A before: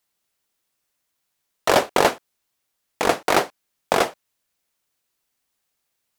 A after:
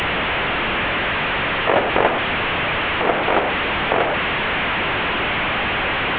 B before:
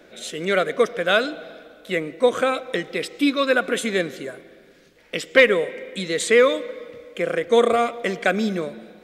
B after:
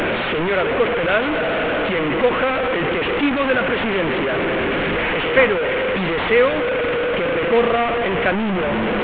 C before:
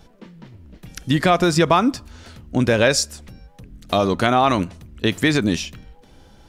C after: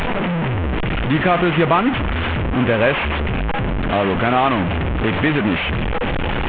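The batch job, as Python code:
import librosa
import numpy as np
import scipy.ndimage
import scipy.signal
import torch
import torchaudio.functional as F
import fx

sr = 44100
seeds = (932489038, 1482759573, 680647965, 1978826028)

y = fx.delta_mod(x, sr, bps=16000, step_db=-13.5)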